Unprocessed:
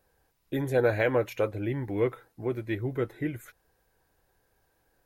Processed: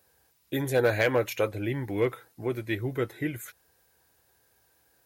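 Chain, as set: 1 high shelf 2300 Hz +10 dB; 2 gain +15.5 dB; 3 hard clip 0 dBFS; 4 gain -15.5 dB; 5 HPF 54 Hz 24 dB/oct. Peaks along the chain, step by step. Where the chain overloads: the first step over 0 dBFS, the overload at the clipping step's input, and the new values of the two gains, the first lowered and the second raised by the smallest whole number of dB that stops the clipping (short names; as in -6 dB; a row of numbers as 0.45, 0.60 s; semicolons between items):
-10.0, +5.5, 0.0, -15.5, -13.0 dBFS; step 2, 5.5 dB; step 2 +9.5 dB, step 4 -9.5 dB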